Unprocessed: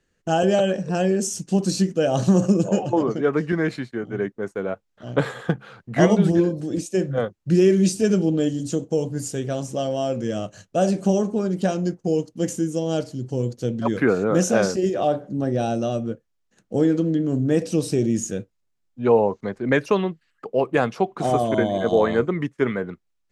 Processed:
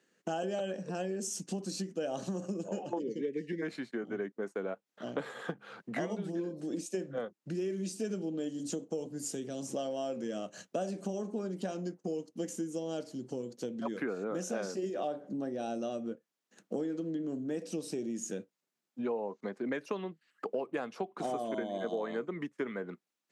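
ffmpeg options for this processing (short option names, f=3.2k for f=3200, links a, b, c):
-filter_complex "[0:a]asplit=3[a][b][c];[a]afade=t=out:st=2.98:d=0.02[d];[b]asuperstop=centerf=970:order=20:qfactor=0.82,afade=t=in:st=2.98:d=0.02,afade=t=out:st=3.61:d=0.02[e];[c]afade=t=in:st=3.61:d=0.02[f];[d][e][f]amix=inputs=3:normalize=0,asettb=1/sr,asplit=3[g][h][i];[g]atrim=end=9.064[j];[h]atrim=start=9.06:end=9.7,asetpts=PTS-STARTPTS,afade=t=in:d=0.004:c=qsin,afade=t=out:st=0.636:d=0.004:c=qsin,acrossover=split=410|3000[k][l][m];[l]acompressor=threshold=-46dB:ratio=2:attack=3.2:release=140:knee=2.83:detection=peak[n];[k][n][m]amix=inputs=3:normalize=0[o];[i]atrim=start=9.696[p];[j][o]acrossfade=d=0.004:c1=hsin:c2=qsin[q];[q][p]acrossfade=d=0.004:c1=qsin:c2=hsin,acompressor=threshold=-33dB:ratio=6,highpass=f=190:w=0.5412,highpass=f=190:w=1.3066"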